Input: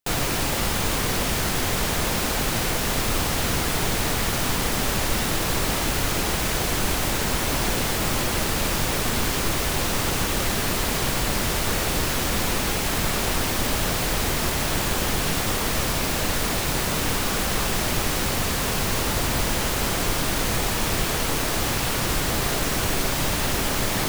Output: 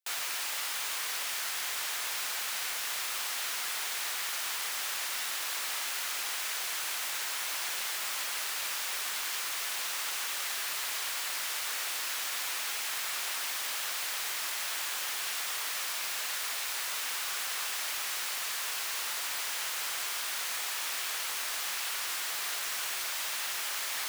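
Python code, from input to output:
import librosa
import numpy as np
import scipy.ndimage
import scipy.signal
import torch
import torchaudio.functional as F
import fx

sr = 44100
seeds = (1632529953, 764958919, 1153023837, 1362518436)

y = scipy.signal.sosfilt(scipy.signal.butter(2, 1300.0, 'highpass', fs=sr, output='sos'), x)
y = y * 10.0 ** (-7.0 / 20.0)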